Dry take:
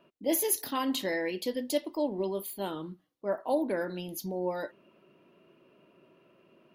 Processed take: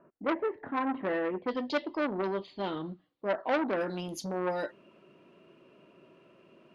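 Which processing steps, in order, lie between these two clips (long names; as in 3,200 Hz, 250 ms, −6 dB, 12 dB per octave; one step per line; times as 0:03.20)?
Butterworth low-pass 1,800 Hz 36 dB per octave, from 0:01.47 4,500 Hz, from 0:03.79 9,300 Hz
saturating transformer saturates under 1,500 Hz
level +3 dB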